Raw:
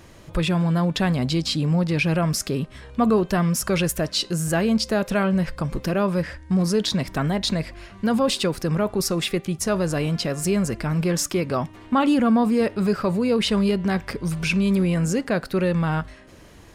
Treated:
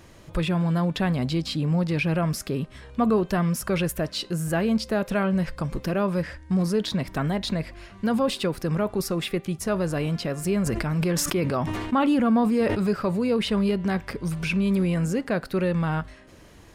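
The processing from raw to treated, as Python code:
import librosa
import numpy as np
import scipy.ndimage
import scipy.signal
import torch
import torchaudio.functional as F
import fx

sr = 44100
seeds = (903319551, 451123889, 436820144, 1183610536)

y = fx.dynamic_eq(x, sr, hz=6400.0, q=0.85, threshold_db=-41.0, ratio=4.0, max_db=-7)
y = fx.sustainer(y, sr, db_per_s=27.0, at=(10.65, 12.77), fade=0.02)
y = y * librosa.db_to_amplitude(-2.5)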